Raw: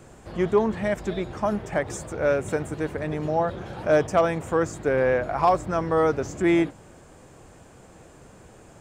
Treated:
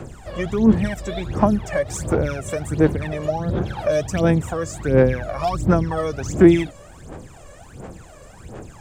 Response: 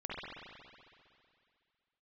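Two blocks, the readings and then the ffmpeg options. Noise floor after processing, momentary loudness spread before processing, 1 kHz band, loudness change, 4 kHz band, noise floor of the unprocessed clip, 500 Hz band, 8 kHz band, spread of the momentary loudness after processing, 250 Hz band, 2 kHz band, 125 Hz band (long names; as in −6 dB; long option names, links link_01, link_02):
−44 dBFS, 8 LU, −1.5 dB, +4.0 dB, +5.0 dB, −50 dBFS, +2.0 dB, +6.5 dB, 22 LU, +8.0 dB, +0.5 dB, +10.0 dB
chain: -filter_complex "[0:a]acrossover=split=340|3000[link_01][link_02][link_03];[link_02]acompressor=threshold=-31dB:ratio=6[link_04];[link_01][link_04][link_03]amix=inputs=3:normalize=0,aphaser=in_gain=1:out_gain=1:delay=1.8:decay=0.76:speed=1.4:type=sinusoidal,volume=3dB"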